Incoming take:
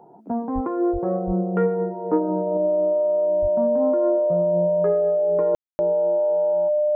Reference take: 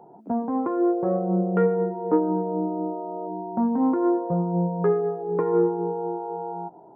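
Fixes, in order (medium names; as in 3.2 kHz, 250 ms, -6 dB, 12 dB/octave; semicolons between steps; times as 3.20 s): band-stop 600 Hz, Q 30; de-plosive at 0.54/0.92/1.26/3.41 s; room tone fill 5.55–5.79 s; trim 0 dB, from 2.57 s +4.5 dB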